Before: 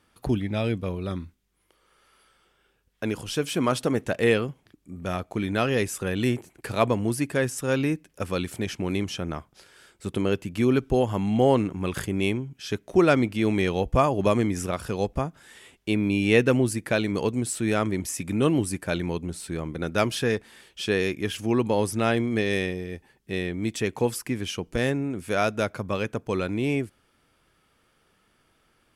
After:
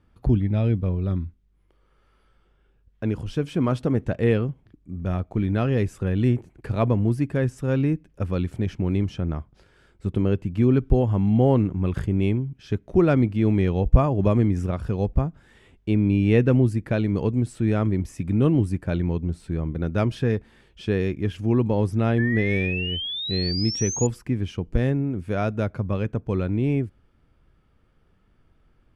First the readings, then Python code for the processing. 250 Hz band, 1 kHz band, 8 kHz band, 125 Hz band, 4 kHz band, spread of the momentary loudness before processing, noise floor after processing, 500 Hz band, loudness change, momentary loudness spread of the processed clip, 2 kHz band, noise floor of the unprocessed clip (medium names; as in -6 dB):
+3.0 dB, -4.0 dB, no reading, +8.0 dB, +0.5 dB, 11 LU, -62 dBFS, -1.0 dB, +2.5 dB, 9 LU, -3.5 dB, -67 dBFS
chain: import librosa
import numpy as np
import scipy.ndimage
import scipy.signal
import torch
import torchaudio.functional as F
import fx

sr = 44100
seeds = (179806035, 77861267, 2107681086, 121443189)

y = fx.riaa(x, sr, side='playback')
y = fx.spec_paint(y, sr, seeds[0], shape='rise', start_s=22.18, length_s=1.89, low_hz=1700.0, high_hz=7000.0, level_db=-26.0)
y = y * librosa.db_to_amplitude(-4.0)